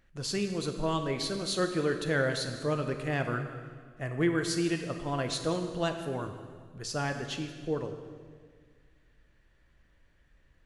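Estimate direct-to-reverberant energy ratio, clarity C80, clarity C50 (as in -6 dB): 5.5 dB, 8.5 dB, 7.5 dB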